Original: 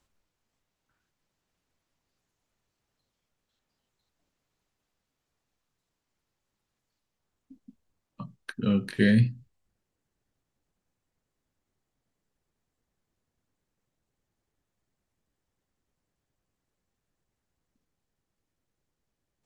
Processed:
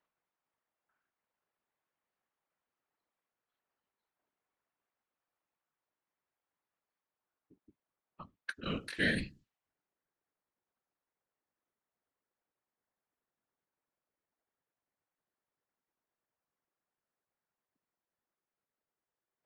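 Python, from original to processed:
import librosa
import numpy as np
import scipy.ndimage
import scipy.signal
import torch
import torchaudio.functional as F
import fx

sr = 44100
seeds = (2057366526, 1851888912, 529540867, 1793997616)

y = fx.highpass(x, sr, hz=1100.0, slope=6)
y = fx.whisperise(y, sr, seeds[0])
y = fx.env_lowpass(y, sr, base_hz=1600.0, full_db=-35.5)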